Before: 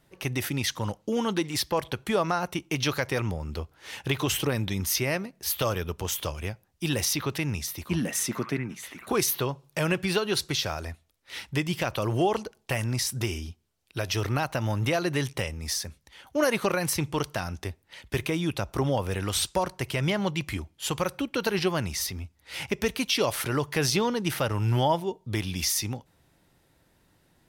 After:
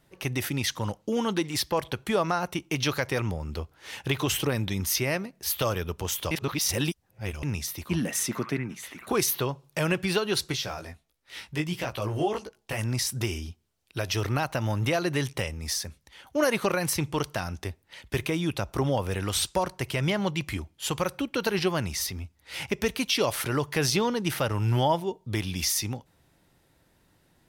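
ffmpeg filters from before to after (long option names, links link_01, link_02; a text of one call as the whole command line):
ffmpeg -i in.wav -filter_complex "[0:a]asplit=3[link_01][link_02][link_03];[link_01]afade=type=out:start_time=10.52:duration=0.02[link_04];[link_02]flanger=delay=15.5:depth=4.3:speed=1.6,afade=type=in:start_time=10.52:duration=0.02,afade=type=out:start_time=12.77:duration=0.02[link_05];[link_03]afade=type=in:start_time=12.77:duration=0.02[link_06];[link_04][link_05][link_06]amix=inputs=3:normalize=0,asplit=3[link_07][link_08][link_09];[link_07]atrim=end=6.312[link_10];[link_08]atrim=start=6.308:end=7.432,asetpts=PTS-STARTPTS,areverse[link_11];[link_09]atrim=start=7.428[link_12];[link_10][link_11]acrossfade=duration=0.004:curve1=hsin:curve2=hsin[link_13];[link_13][link_12]acrossfade=duration=0.004:curve1=hsin:curve2=hsin" out.wav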